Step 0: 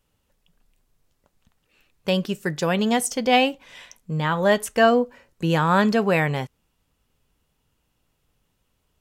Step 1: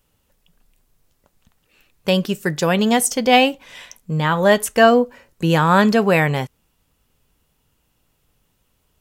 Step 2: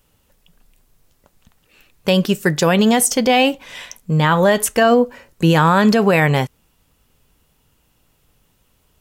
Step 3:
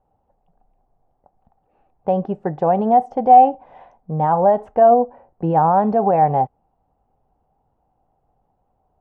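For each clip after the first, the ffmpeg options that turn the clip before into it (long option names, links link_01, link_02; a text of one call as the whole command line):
ffmpeg -i in.wav -af "highshelf=frequency=11000:gain=7,volume=4.5dB" out.wav
ffmpeg -i in.wav -af "alimiter=level_in=9dB:limit=-1dB:release=50:level=0:latency=1,volume=-4dB" out.wav
ffmpeg -i in.wav -af "lowpass=frequency=770:width_type=q:width=8.7,volume=-8dB" out.wav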